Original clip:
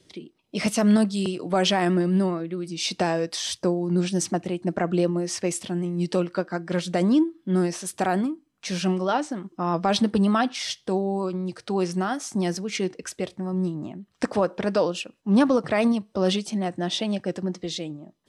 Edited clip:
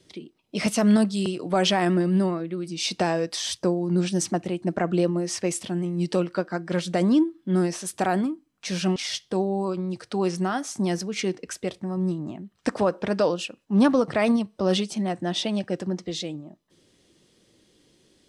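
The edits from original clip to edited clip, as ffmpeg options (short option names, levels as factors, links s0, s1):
-filter_complex "[0:a]asplit=2[s0][s1];[s0]atrim=end=8.962[s2];[s1]atrim=start=10.518[s3];[s2][s3]acrossfade=d=0.004:c1=hsin:c2=hsin"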